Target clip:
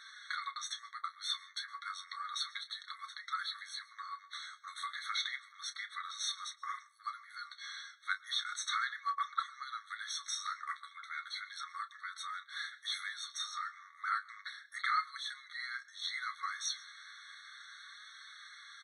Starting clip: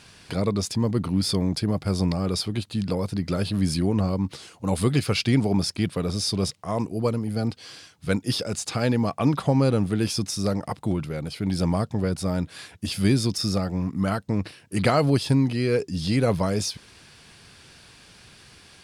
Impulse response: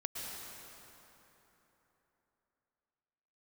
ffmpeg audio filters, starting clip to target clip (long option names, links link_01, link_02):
-filter_complex "[0:a]lowpass=4100,bandreject=frequency=66.12:width_type=h:width=4,bandreject=frequency=132.24:width_type=h:width=4,bandreject=frequency=198.36:width_type=h:width=4,bandreject=frequency=264.48:width_type=h:width=4,bandreject=frequency=330.6:width_type=h:width=4,bandreject=frequency=396.72:width_type=h:width=4,bandreject=frequency=462.84:width_type=h:width=4,bandreject=frequency=528.96:width_type=h:width=4,bandreject=frequency=595.08:width_type=h:width=4,bandreject=frequency=661.2:width_type=h:width=4,bandreject=frequency=727.32:width_type=h:width=4,acompressor=threshold=-25dB:ratio=6,flanger=delay=4.5:depth=8.5:regen=33:speed=0.33:shape=sinusoidal,asplit=2[link_01][link_02];[link_02]adelay=30,volume=-11.5dB[link_03];[link_01][link_03]amix=inputs=2:normalize=0,asplit=2[link_04][link_05];[1:a]atrim=start_sample=2205,afade=type=out:start_time=0.21:duration=0.01,atrim=end_sample=9702[link_06];[link_05][link_06]afir=irnorm=-1:irlink=0,volume=-13.5dB[link_07];[link_04][link_07]amix=inputs=2:normalize=0,afftfilt=real='re*eq(mod(floor(b*sr/1024/1100),2),1)':imag='im*eq(mod(floor(b*sr/1024/1100),2),1)':win_size=1024:overlap=0.75,volume=6dB"